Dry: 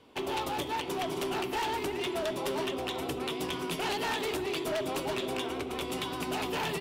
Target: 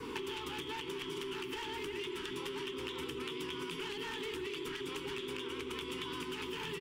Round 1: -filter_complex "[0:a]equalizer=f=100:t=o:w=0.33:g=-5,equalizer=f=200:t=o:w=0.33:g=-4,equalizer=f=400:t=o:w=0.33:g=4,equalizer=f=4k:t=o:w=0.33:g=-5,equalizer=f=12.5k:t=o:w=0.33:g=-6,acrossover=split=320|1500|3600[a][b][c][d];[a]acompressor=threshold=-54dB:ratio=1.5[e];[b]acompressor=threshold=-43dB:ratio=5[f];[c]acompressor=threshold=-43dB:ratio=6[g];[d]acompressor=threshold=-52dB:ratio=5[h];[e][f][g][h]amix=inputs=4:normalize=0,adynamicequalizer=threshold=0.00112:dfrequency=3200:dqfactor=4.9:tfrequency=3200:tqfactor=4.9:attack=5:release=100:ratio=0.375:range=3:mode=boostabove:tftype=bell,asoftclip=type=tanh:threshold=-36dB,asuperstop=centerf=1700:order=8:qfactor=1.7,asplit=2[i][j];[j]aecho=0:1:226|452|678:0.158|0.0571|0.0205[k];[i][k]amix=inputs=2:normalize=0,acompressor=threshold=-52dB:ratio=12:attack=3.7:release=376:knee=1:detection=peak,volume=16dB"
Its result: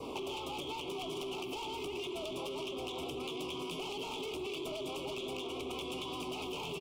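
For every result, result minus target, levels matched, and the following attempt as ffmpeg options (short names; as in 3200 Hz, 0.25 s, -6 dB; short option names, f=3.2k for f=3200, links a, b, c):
soft clip: distortion +15 dB; 2000 Hz band -4.0 dB
-filter_complex "[0:a]equalizer=f=100:t=o:w=0.33:g=-5,equalizer=f=200:t=o:w=0.33:g=-4,equalizer=f=400:t=o:w=0.33:g=4,equalizer=f=4k:t=o:w=0.33:g=-5,equalizer=f=12.5k:t=o:w=0.33:g=-6,acrossover=split=320|1500|3600[a][b][c][d];[a]acompressor=threshold=-54dB:ratio=1.5[e];[b]acompressor=threshold=-43dB:ratio=5[f];[c]acompressor=threshold=-43dB:ratio=6[g];[d]acompressor=threshold=-52dB:ratio=5[h];[e][f][g][h]amix=inputs=4:normalize=0,adynamicequalizer=threshold=0.00112:dfrequency=3200:dqfactor=4.9:tfrequency=3200:tqfactor=4.9:attack=5:release=100:ratio=0.375:range=3:mode=boostabove:tftype=bell,asoftclip=type=tanh:threshold=-25.5dB,asuperstop=centerf=1700:order=8:qfactor=1.7,asplit=2[i][j];[j]aecho=0:1:226|452|678:0.158|0.0571|0.0205[k];[i][k]amix=inputs=2:normalize=0,acompressor=threshold=-52dB:ratio=12:attack=3.7:release=376:knee=1:detection=peak,volume=16dB"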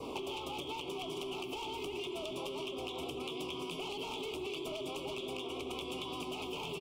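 2000 Hz band -3.5 dB
-filter_complex "[0:a]equalizer=f=100:t=o:w=0.33:g=-5,equalizer=f=200:t=o:w=0.33:g=-4,equalizer=f=400:t=o:w=0.33:g=4,equalizer=f=4k:t=o:w=0.33:g=-5,equalizer=f=12.5k:t=o:w=0.33:g=-6,acrossover=split=320|1500|3600[a][b][c][d];[a]acompressor=threshold=-54dB:ratio=1.5[e];[b]acompressor=threshold=-43dB:ratio=5[f];[c]acompressor=threshold=-43dB:ratio=6[g];[d]acompressor=threshold=-52dB:ratio=5[h];[e][f][g][h]amix=inputs=4:normalize=0,adynamicequalizer=threshold=0.00112:dfrequency=3200:dqfactor=4.9:tfrequency=3200:tqfactor=4.9:attack=5:release=100:ratio=0.375:range=3:mode=boostabove:tftype=bell,asoftclip=type=tanh:threshold=-25.5dB,asuperstop=centerf=650:order=8:qfactor=1.7,asplit=2[i][j];[j]aecho=0:1:226|452|678:0.158|0.0571|0.0205[k];[i][k]amix=inputs=2:normalize=0,acompressor=threshold=-52dB:ratio=12:attack=3.7:release=376:knee=1:detection=peak,volume=16dB"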